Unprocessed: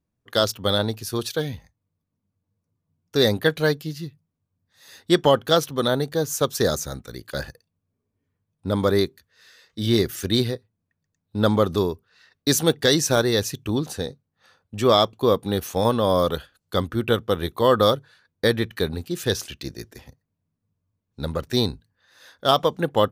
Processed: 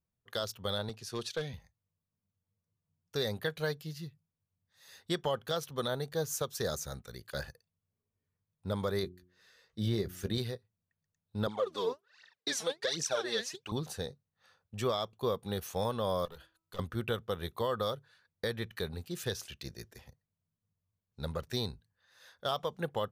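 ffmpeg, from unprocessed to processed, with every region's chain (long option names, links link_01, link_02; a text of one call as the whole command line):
ffmpeg -i in.wav -filter_complex "[0:a]asettb=1/sr,asplit=3[link_01][link_02][link_03];[link_01]atrim=end=0.894[link_04];[link_02]atrim=start=0.89:end=1.54,asetpts=PTS-STARTPTS,afade=type=in:duration=0.004:curve=qsin,afade=type=out:start_time=0.646:duration=0.004:curve=qsin,highpass=130,lowpass=7800,aeval=exprs='clip(val(0),-1,0.119)':channel_layout=same[link_05];[link_03]atrim=start=1.536[link_06];[link_04][link_05]acrossfade=duration=0.004:curve1=hsin:curve2=qsin[link_07];[link_07][link_06]acrossfade=duration=0.004:curve1=qsin:curve2=hsin,asettb=1/sr,asplit=3[link_08][link_09][link_10];[link_08]atrim=end=9.034[link_11];[link_09]atrim=start=9.03:end=10.38,asetpts=PTS-STARTPTS,afade=type=in:duration=0.004:curve=qsin,afade=type=out:start_time=1.346:duration=0.004:curve=qsin,tiltshelf=frequency=930:gain=4.5,asplit=2[link_12][link_13];[link_13]adelay=15,volume=-12dB[link_14];[link_12][link_14]amix=inputs=2:normalize=0,atrim=end_sample=59535,bandreject=frequency=90.23:width_type=h:width=4,bandreject=frequency=180.46:width_type=h:width=4,bandreject=frequency=270.69:width_type=h:width=4,bandreject=frequency=360.92:width_type=h:width=4[link_15];[link_10]atrim=start=10.376[link_16];[link_11][link_15]acrossfade=duration=0.004:curve1=hsin:curve2=qsin[link_17];[link_17][link_16]acrossfade=duration=0.004:curve1=qsin:curve2=hsin,asettb=1/sr,asplit=3[link_18][link_19][link_20];[link_18]atrim=end=11.474[link_21];[link_19]atrim=start=11.47:end=13.72,asetpts=PTS-STARTPTS,afade=type=in:duration=0.004:curve=qsin,afade=type=out:start_time=2.246:duration=0.004:curve=qsin,aphaser=in_gain=1:out_gain=1:delay=4.7:decay=0.78:speed=1.3:type=triangular,highpass=300,lowpass=7000[link_22];[link_20]atrim=start=13.716[link_23];[link_21][link_22]acrossfade=duration=0.004:curve1=hsin:curve2=qsin[link_24];[link_24][link_23]acrossfade=duration=0.004:curve1=qsin:curve2=hsin,asettb=1/sr,asplit=3[link_25][link_26][link_27];[link_25]atrim=end=16.254[link_28];[link_26]atrim=start=16.25:end=16.79,asetpts=PTS-STARTPTS,afade=type=in:duration=0.004:curve=qsin,afade=type=out:start_time=0.536:duration=0.004:curve=qsin,bandreject=frequency=325.2:width_type=h:width=4,bandreject=frequency=650.4:width_type=h:width=4,bandreject=frequency=975.6:width_type=h:width=4,bandreject=frequency=1300.8:width_type=h:width=4,aeval=exprs='(tanh(10*val(0)+0.65)-tanh(0.65))/10':channel_layout=same,acompressor=threshold=-33dB:ratio=6:attack=3.2:release=140:knee=1:detection=peak[link_29];[link_27]atrim=start=16.786[link_30];[link_28][link_29]acrossfade=duration=0.004:curve1=hsin:curve2=qsin[link_31];[link_31][link_30]acrossfade=duration=0.004:curve1=qsin:curve2=hsin,equalizer=frequency=290:width=2.9:gain=-10,alimiter=limit=-13.5dB:level=0:latency=1:release=261,volume=-8.5dB" out.wav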